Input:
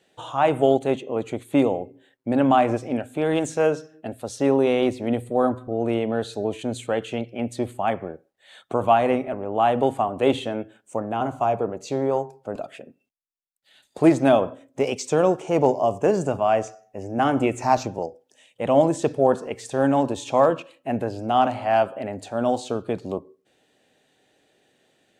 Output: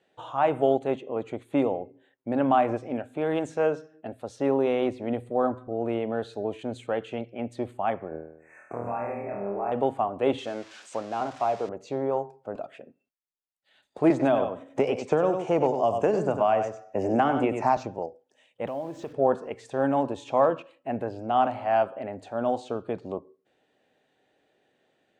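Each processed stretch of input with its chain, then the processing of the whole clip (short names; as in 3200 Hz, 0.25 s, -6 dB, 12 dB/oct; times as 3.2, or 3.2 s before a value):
8.09–9.72 compressor, threshold -27 dBFS + brick-wall FIR band-stop 2700–5800 Hz + flutter echo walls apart 4.3 m, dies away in 0.76 s
10.38–11.69 switching spikes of -22 dBFS + LPF 7200 Hz 24 dB/oct + low shelf 180 Hz -8 dB
14.1–17.77 echo 95 ms -8.5 dB + three-band squash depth 100%
18.67–19.13 LPF 6800 Hz 24 dB/oct + compressor 3:1, threshold -29 dBFS + requantised 8-bit, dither none
whole clip: LPF 1300 Hz 6 dB/oct; low shelf 450 Hz -7.5 dB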